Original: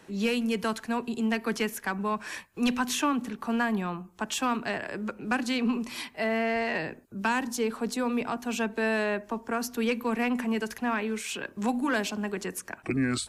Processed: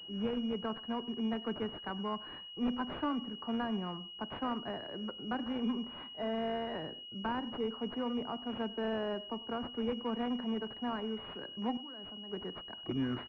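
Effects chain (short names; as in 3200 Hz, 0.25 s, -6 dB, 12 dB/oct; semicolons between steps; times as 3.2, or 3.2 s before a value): 11.77–12.31 level quantiser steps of 21 dB; speakerphone echo 0.1 s, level -17 dB; pulse-width modulation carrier 2900 Hz; gain -7 dB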